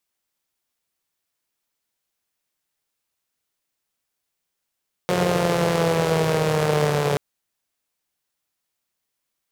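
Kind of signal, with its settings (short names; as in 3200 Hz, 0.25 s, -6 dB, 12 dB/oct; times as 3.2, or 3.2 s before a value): four-cylinder engine model, changing speed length 2.08 s, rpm 5400, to 4300, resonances 160/450 Hz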